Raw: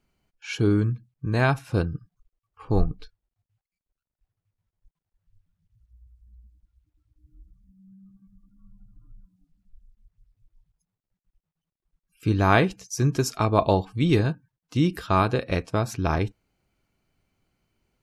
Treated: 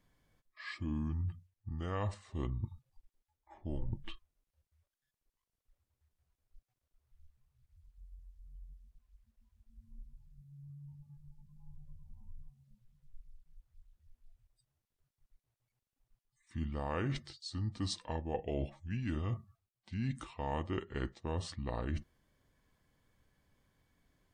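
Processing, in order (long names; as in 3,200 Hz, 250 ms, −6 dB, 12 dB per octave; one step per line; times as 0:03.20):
reversed playback
downward compressor 6 to 1, threshold −35 dBFS, peak gain reduction 20 dB
reversed playback
wrong playback speed 45 rpm record played at 33 rpm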